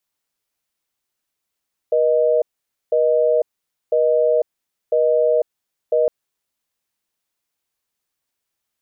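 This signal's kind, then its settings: call progress tone busy tone, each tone -16 dBFS 4.16 s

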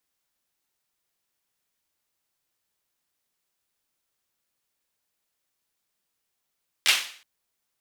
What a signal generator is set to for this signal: hand clap length 0.37 s, bursts 3, apart 12 ms, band 2700 Hz, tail 0.48 s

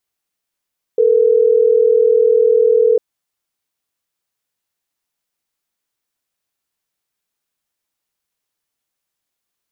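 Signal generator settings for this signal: call progress tone ringback tone, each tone -11.5 dBFS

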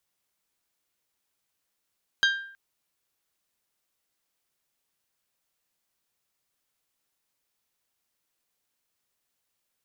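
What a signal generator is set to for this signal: glass hit bell, length 0.32 s, lowest mode 1590 Hz, decay 0.60 s, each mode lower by 4 dB, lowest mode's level -17.5 dB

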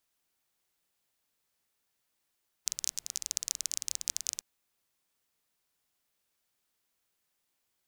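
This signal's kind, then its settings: rain from filtered ticks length 1.75 s, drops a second 22, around 6300 Hz, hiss -28 dB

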